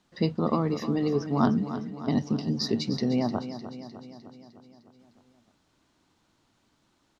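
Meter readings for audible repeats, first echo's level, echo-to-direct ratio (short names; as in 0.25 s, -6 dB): 6, -11.5 dB, -9.5 dB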